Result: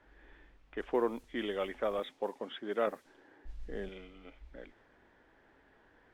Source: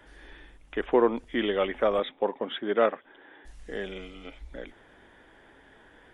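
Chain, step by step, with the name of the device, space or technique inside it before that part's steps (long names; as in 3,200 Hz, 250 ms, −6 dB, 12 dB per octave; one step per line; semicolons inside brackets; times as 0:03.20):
0:02.87–0:03.89: spectral tilt −2.5 dB per octave
cassette deck with a dynamic noise filter (white noise bed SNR 28 dB; low-pass that shuts in the quiet parts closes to 2,000 Hz, open at −21.5 dBFS)
level −9 dB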